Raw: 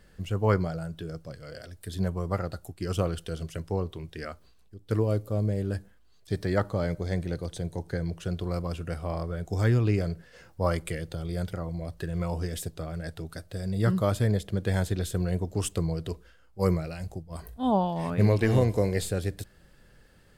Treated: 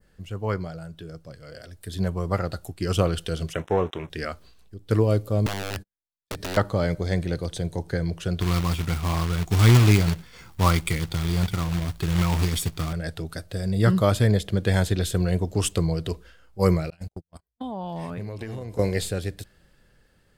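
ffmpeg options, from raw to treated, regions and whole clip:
ffmpeg -i in.wav -filter_complex "[0:a]asettb=1/sr,asplit=3[link_01][link_02][link_03];[link_01]atrim=end=3.534[link_04];[link_02]atrim=start=3.53:end=4.1,asetpts=PTS-STARTPTS,afade=type=in:duration=0.004:curve=qsin,afade=type=out:start_time=0.566:duration=0.004:curve=qsin,aeval=exprs='sgn(val(0))*max(abs(val(0))-0.00282,0)':channel_layout=same,asplit=2[link_05][link_06];[link_06]highpass=frequency=720:poles=1,volume=15dB,asoftclip=type=tanh:threshold=-16dB[link_07];[link_05][link_07]amix=inputs=2:normalize=0,lowpass=frequency=1900:poles=1,volume=-6dB,asuperstop=centerf=4600:order=4:qfactor=2.3[link_08];[link_03]atrim=start=4.096[link_09];[link_04][link_08]acrossfade=duration=0.004:curve1=hsin:curve2=qsin[link_10];[link_10][link_09]acrossfade=duration=0.004:curve1=qsin:curve2=hsin,asettb=1/sr,asplit=3[link_11][link_12][link_13];[link_11]atrim=end=5.464[link_14];[link_12]atrim=start=5.46:end=6.57,asetpts=PTS-STARTPTS,afade=type=in:duration=0.004:curve=qsin,afade=type=out:start_time=1.106:duration=0.004:curve=qsin,agate=range=-45dB:threshold=-44dB:ratio=16:release=100:detection=peak,acompressor=threshold=-30dB:ratio=4:attack=3.2:release=140:knee=1:detection=peak,aeval=exprs='(mod(29.9*val(0)+1,2)-1)/29.9':channel_layout=same[link_15];[link_13]atrim=start=6.566[link_16];[link_14][link_15]acrossfade=duration=0.004:curve1=hsin:curve2=qsin[link_17];[link_17][link_16]acrossfade=duration=0.004:curve1=qsin:curve2=hsin,asettb=1/sr,asplit=3[link_18][link_19][link_20];[link_18]atrim=end=8.404[link_21];[link_19]atrim=start=8.4:end=12.93,asetpts=PTS-STARTPTS,afade=type=in:duration=0.004:curve=qsin,afade=type=out:start_time=4.526:duration=0.004:curve=qsin,aecho=1:1:0.9:0.68,atrim=end_sample=199773,acrusher=bits=3:mode=log:mix=0:aa=0.000001[link_22];[link_20]atrim=start=12.926[link_23];[link_21][link_22]acrossfade=duration=0.004:curve1=hsin:curve2=qsin[link_24];[link_24][link_23]acrossfade=duration=0.004:curve1=qsin:curve2=hsin,asettb=1/sr,asplit=3[link_25][link_26][link_27];[link_25]atrim=end=16.904[link_28];[link_26]atrim=start=16.9:end=18.79,asetpts=PTS-STARTPTS,afade=type=in:duration=0.004:curve=qsin,afade=type=out:start_time=1.886:duration=0.004:curve=qsin,agate=range=-48dB:threshold=-35dB:ratio=16:release=100:detection=peak,acompressor=threshold=-33dB:ratio=20:attack=3.2:release=140:knee=1:detection=peak[link_29];[link_27]atrim=start=18.786[link_30];[link_28][link_29]acrossfade=duration=0.004:curve1=hsin:curve2=qsin[link_31];[link_31][link_30]acrossfade=duration=0.004:curve1=qsin:curve2=hsin,adynamicequalizer=threshold=0.00447:dfrequency=3300:dqfactor=0.77:tfrequency=3300:tqfactor=0.77:attack=5:release=100:ratio=0.375:range=2:mode=boostabove:tftype=bell,dynaudnorm=framelen=400:gausssize=9:maxgain=11.5dB,volume=-4dB" out.wav

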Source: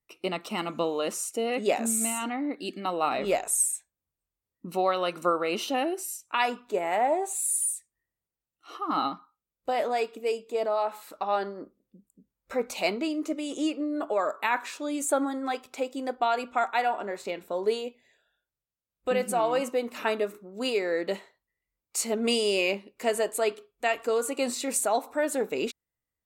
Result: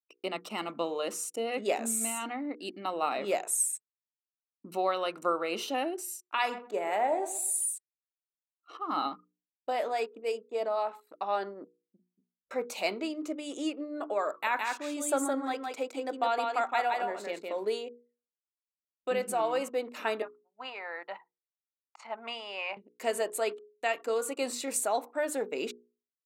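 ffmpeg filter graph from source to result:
ffmpeg -i in.wav -filter_complex "[0:a]asettb=1/sr,asplit=3[link_01][link_02][link_03];[link_01]atrim=end=6.124[link_04];[link_02]atrim=start=6.12:end=7.67,asetpts=PTS-STARTPTS,afade=type=in:duration=0.004:curve=qsin,afade=type=out:start_time=1.546:duration=0.004:curve=qsin,asplit=2[link_05][link_06];[link_06]adelay=39,volume=-13.5dB[link_07];[link_05][link_07]amix=inputs=2:normalize=0,atrim=end_sample=68355,asplit=2[link_08][link_09];[link_09]adelay=126,lowpass=frequency=1900:poles=1,volume=-13dB,asplit=2[link_10][link_11];[link_11]adelay=126,lowpass=frequency=1900:poles=1,volume=0.3,asplit=2[link_12][link_13];[link_13]adelay=126,lowpass=frequency=1900:poles=1,volume=0.3[link_14];[link_08][link_10][link_12][link_14]amix=inputs=4:normalize=0,atrim=end_sample=68355[link_15];[link_03]atrim=start=7.666[link_16];[link_04][link_15]acrossfade=duration=0.004:curve1=hsin:curve2=qsin[link_17];[link_17][link_16]acrossfade=duration=0.004:curve1=qsin:curve2=hsin,asettb=1/sr,asplit=3[link_18][link_19][link_20];[link_18]atrim=end=14.304[link_21];[link_19]atrim=start=14.3:end=17.67,asetpts=PTS-STARTPTS,afade=type=in:duration=0.004:curve=qsin,afade=type=out:start_time=3.366:duration=0.004:curve=qsin,deesser=0.35,aecho=1:1:165:0.668,atrim=end_sample=148617[link_22];[link_20]atrim=start=17.666[link_23];[link_21][link_22]acrossfade=duration=0.004:curve1=hsin:curve2=qsin[link_24];[link_24][link_23]acrossfade=duration=0.004:curve1=qsin:curve2=hsin,asettb=1/sr,asplit=3[link_25][link_26][link_27];[link_25]atrim=end=20.224[link_28];[link_26]atrim=start=20.22:end=22.77,asetpts=PTS-STARTPTS,afade=type=in:duration=0.004:curve=qsin,afade=type=out:start_time=2.546:duration=0.004:curve=qsin,highpass=230,lowpass=2100,lowshelf=frequency=600:width_type=q:width=3:gain=-12[link_29];[link_27]atrim=start=22.766[link_30];[link_28][link_29]acrossfade=duration=0.004:curve1=hsin:curve2=qsin[link_31];[link_31][link_30]acrossfade=duration=0.004:curve1=qsin:curve2=hsin,anlmdn=0.0631,highpass=220,bandreject=frequency=60:width_type=h:width=6,bandreject=frequency=120:width_type=h:width=6,bandreject=frequency=180:width_type=h:width=6,bandreject=frequency=240:width_type=h:width=6,bandreject=frequency=300:width_type=h:width=6,bandreject=frequency=360:width_type=h:width=6,bandreject=frequency=420:width_type=h:width=6,bandreject=frequency=480:width_type=h:width=6,volume=-3.5dB" out.wav

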